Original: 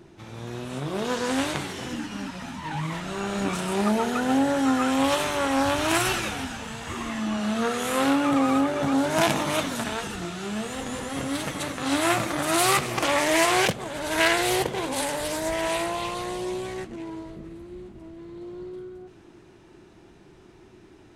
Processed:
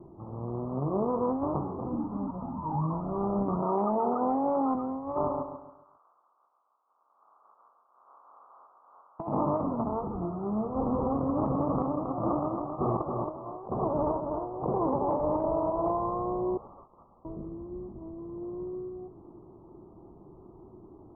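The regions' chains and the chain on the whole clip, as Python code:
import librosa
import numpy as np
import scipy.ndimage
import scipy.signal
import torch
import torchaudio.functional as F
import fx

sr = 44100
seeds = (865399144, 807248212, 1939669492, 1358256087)

y = fx.chain(x, sr, fx.highpass(hz=750.0, slope=6),
    fx.env_flatten(amount_pct=100), at=(3.62, 4.75))
y = fx.spec_clip(y, sr, under_db=28, at=(5.28, 9.19), fade=0.02)
y = fx.ladder_bandpass(y, sr, hz=3300.0, resonance_pct=45, at=(5.28, 9.19), fade=0.02)
y = fx.echo_feedback(y, sr, ms=137, feedback_pct=38, wet_db=-6.0, at=(5.28, 9.19), fade=0.02)
y = fx.chain(y, sr, fx.echo_feedback(ms=126, feedback_pct=55, wet_db=-17.5),
    fx.over_compress(threshold_db=-29.0, ratio=-0.5),
    fx.echo_crushed(ms=273, feedback_pct=35, bits=7, wet_db=-4.5), at=(10.75, 15.91))
y = fx.chain(y, sr, fx.cvsd(bps=32000),
    fx.brickwall_highpass(low_hz=2400.0),
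    fx.freq_invert(carrier_hz=3800), at=(16.57, 17.25))
y = scipy.signal.sosfilt(scipy.signal.butter(16, 1200.0, 'lowpass', fs=sr, output='sos'), y)
y = fx.over_compress(y, sr, threshold_db=-27.0, ratio=-0.5)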